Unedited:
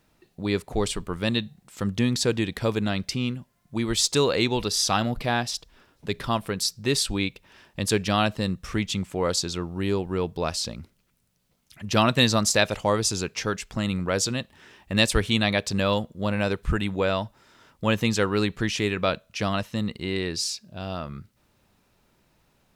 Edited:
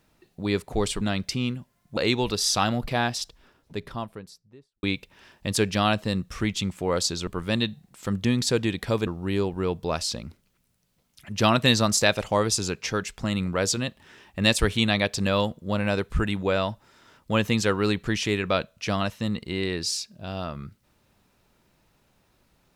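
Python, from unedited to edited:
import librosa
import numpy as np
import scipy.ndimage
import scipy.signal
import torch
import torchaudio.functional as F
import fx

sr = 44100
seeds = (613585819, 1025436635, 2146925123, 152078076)

y = fx.studio_fade_out(x, sr, start_s=5.42, length_s=1.74)
y = fx.edit(y, sr, fx.move(start_s=1.01, length_s=1.8, to_s=9.6),
    fx.cut(start_s=3.77, length_s=0.53), tone=tone)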